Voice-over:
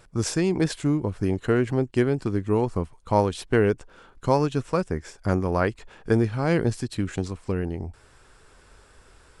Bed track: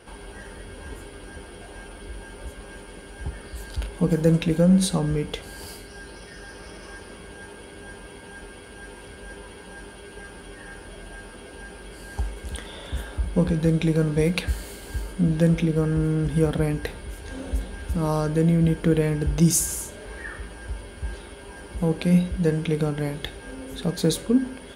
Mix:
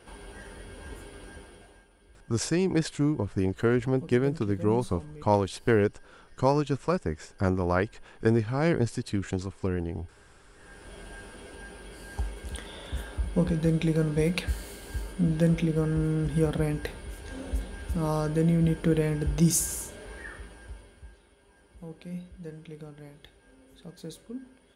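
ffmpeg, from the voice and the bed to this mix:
ffmpeg -i stem1.wav -i stem2.wav -filter_complex "[0:a]adelay=2150,volume=-2.5dB[link_01];[1:a]volume=11.5dB,afade=type=out:start_time=1.24:duration=0.62:silence=0.16788,afade=type=in:start_time=10.52:duration=0.48:silence=0.158489,afade=type=out:start_time=19.98:duration=1.16:silence=0.16788[link_02];[link_01][link_02]amix=inputs=2:normalize=0" out.wav

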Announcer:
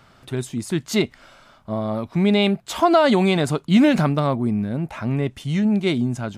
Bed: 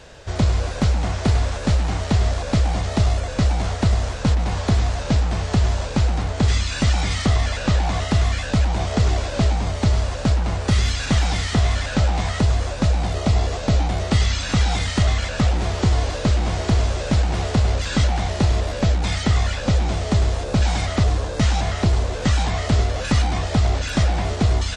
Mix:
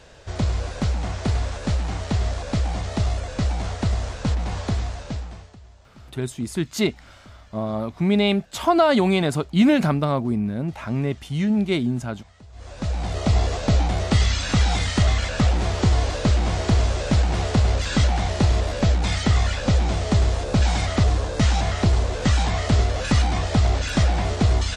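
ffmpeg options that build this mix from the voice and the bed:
ffmpeg -i stem1.wav -i stem2.wav -filter_complex "[0:a]adelay=5850,volume=-1.5dB[link_01];[1:a]volume=23.5dB,afade=type=out:start_time=4.58:duration=0.98:silence=0.0630957,afade=type=in:start_time=12.52:duration=0.84:silence=0.0398107[link_02];[link_01][link_02]amix=inputs=2:normalize=0" out.wav

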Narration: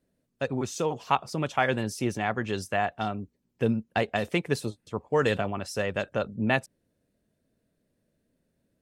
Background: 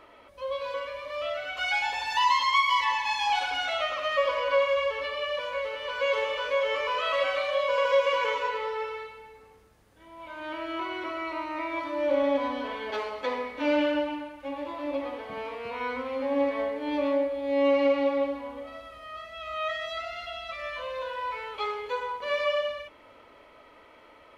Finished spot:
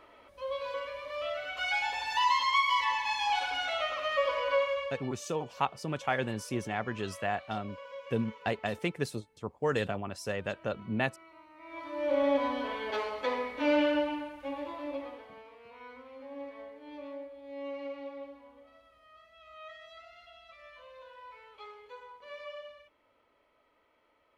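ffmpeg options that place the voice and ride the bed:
ffmpeg -i stem1.wav -i stem2.wav -filter_complex "[0:a]adelay=4500,volume=-5.5dB[link_01];[1:a]volume=17dB,afade=type=out:start_time=4.53:duration=0.58:silence=0.11885,afade=type=in:start_time=11.59:duration=0.71:silence=0.0944061,afade=type=out:start_time=14.38:duration=1.06:silence=0.16788[link_02];[link_01][link_02]amix=inputs=2:normalize=0" out.wav

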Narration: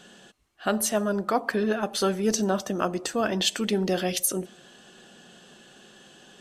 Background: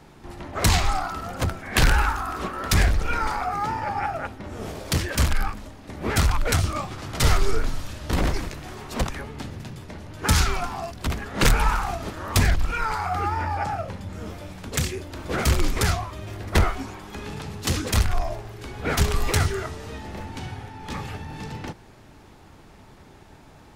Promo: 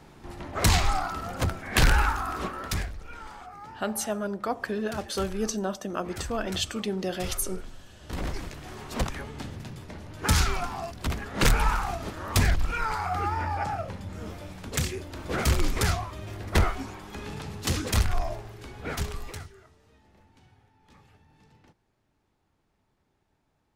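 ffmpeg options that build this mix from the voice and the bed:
ffmpeg -i stem1.wav -i stem2.wav -filter_complex "[0:a]adelay=3150,volume=-5dB[link_01];[1:a]volume=12.5dB,afade=type=out:start_time=2.42:duration=0.46:silence=0.16788,afade=type=in:start_time=7.9:duration=0.93:silence=0.188365,afade=type=out:start_time=18.28:duration=1.21:silence=0.0841395[link_02];[link_01][link_02]amix=inputs=2:normalize=0" out.wav

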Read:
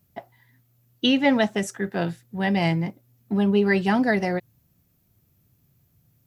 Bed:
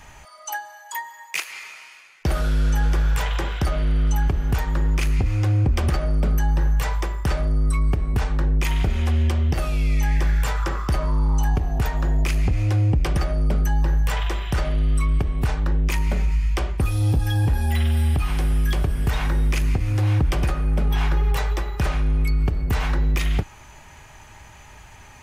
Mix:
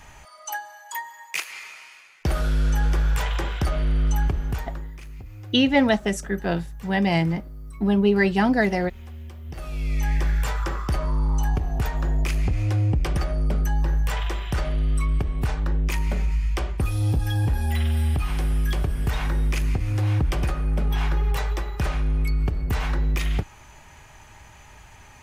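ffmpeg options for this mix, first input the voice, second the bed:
ffmpeg -i stem1.wav -i stem2.wav -filter_complex "[0:a]adelay=4500,volume=1dB[link_01];[1:a]volume=15dB,afade=type=out:start_time=4.23:duration=0.69:silence=0.133352,afade=type=in:start_time=9.43:duration=0.66:silence=0.149624[link_02];[link_01][link_02]amix=inputs=2:normalize=0" out.wav

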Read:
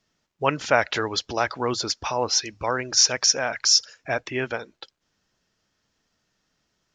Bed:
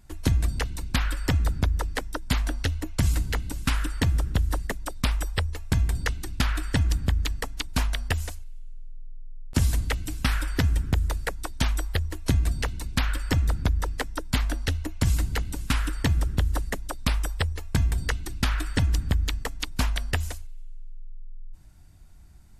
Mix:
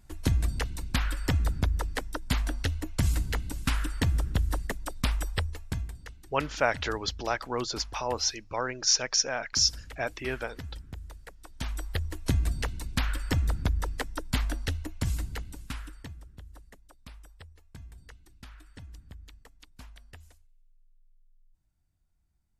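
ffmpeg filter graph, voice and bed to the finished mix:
ffmpeg -i stem1.wav -i stem2.wav -filter_complex "[0:a]adelay=5900,volume=-6dB[link_01];[1:a]volume=11.5dB,afade=type=out:start_time=5.36:duration=0.61:silence=0.177828,afade=type=in:start_time=11.41:duration=0.68:silence=0.188365,afade=type=out:start_time=14.48:duration=1.7:silence=0.1[link_02];[link_01][link_02]amix=inputs=2:normalize=0" out.wav

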